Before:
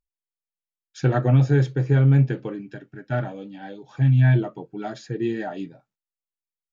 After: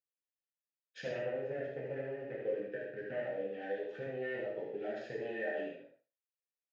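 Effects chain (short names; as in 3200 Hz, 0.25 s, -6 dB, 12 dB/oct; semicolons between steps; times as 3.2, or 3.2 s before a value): one-sided fold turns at -21.5 dBFS; 1.09–3.71 bell 5300 Hz -9 dB 1.9 oct; sample leveller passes 2; compressor 6:1, threshold -31 dBFS, peak gain reduction 17.5 dB; vowel filter e; air absorption 57 m; feedback echo 76 ms, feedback 19%, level -4 dB; non-linear reverb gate 0.18 s falling, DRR -3.5 dB; gain +3 dB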